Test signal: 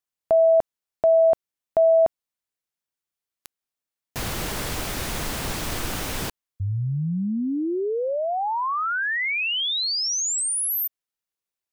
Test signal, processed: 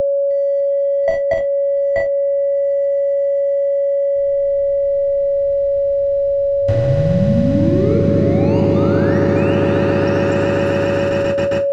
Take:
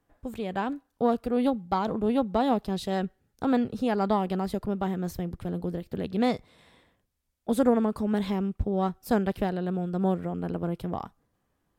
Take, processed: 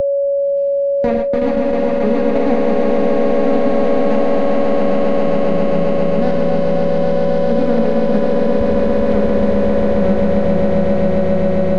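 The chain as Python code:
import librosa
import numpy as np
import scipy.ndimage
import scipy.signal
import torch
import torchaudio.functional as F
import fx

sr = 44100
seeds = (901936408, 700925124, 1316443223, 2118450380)

p1 = scipy.signal.medfilt(x, 41)
p2 = fx.level_steps(p1, sr, step_db=13)
p3 = fx.high_shelf(p2, sr, hz=5100.0, db=6.5)
p4 = p3 + fx.echo_swell(p3, sr, ms=134, loudest=8, wet_db=-5.5, dry=0)
p5 = fx.rev_schroeder(p4, sr, rt60_s=3.7, comb_ms=31, drr_db=-2.0)
p6 = fx.gate_hold(p5, sr, open_db=-18.0, close_db=-23.0, hold_ms=34.0, range_db=-31, attack_ms=4.0, release_ms=102.0)
p7 = fx.air_absorb(p6, sr, metres=150.0)
p8 = p7 + 10.0 ** (-24.0 / 20.0) * np.sin(2.0 * np.pi * 560.0 * np.arange(len(p7)) / sr)
p9 = fx.band_squash(p8, sr, depth_pct=70)
y = p9 * 10.0 ** (6.5 / 20.0)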